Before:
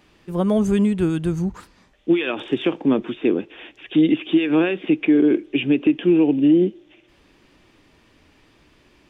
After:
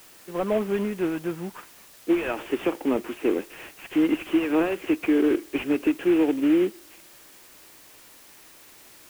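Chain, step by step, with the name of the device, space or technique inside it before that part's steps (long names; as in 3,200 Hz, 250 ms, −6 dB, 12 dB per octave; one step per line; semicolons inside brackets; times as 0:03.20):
army field radio (band-pass filter 370–3,200 Hz; variable-slope delta modulation 16 kbit/s; white noise bed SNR 25 dB)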